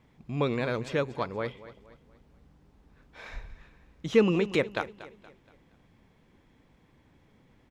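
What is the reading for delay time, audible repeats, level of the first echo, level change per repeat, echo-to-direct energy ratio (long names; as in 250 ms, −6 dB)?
236 ms, 3, −16.0 dB, −8.0 dB, −15.5 dB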